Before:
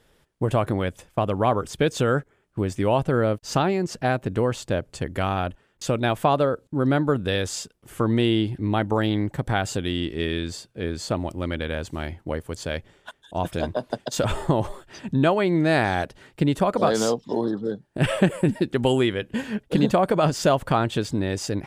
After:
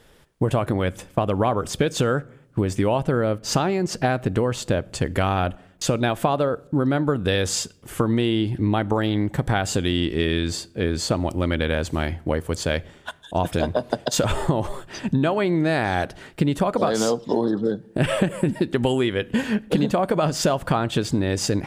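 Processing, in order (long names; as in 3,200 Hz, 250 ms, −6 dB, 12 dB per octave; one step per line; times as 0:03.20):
downward compressor, threshold −24 dBFS, peak gain reduction 11.5 dB
on a send: convolution reverb RT60 0.70 s, pre-delay 4 ms, DRR 20.5 dB
on the sum: level +7 dB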